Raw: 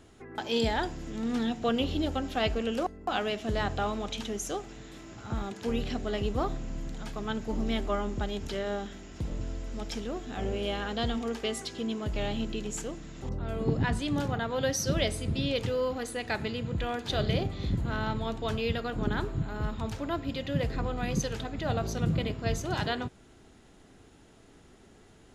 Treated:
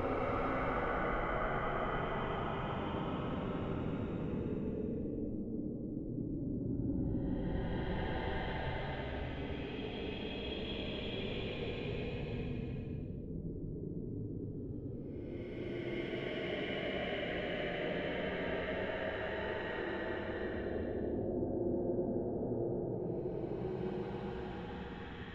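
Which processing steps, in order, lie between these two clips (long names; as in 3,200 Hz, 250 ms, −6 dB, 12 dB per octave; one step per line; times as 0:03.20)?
auto-filter low-pass square 3.4 Hz 340–2,400 Hz
random phases in short frames
extreme stretch with random phases 27×, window 0.10 s, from 0:07.93
level −6.5 dB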